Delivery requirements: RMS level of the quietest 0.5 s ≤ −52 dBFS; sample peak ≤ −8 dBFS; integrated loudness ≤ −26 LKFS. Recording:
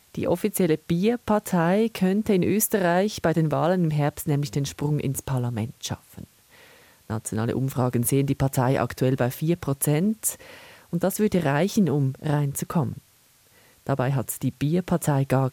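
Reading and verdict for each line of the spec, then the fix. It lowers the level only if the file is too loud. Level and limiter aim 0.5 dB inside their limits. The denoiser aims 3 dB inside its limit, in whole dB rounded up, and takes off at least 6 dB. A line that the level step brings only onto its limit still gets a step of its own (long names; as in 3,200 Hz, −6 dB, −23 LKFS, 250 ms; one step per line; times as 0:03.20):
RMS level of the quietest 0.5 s −59 dBFS: in spec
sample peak −9.0 dBFS: in spec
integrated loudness −24.0 LKFS: out of spec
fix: level −2.5 dB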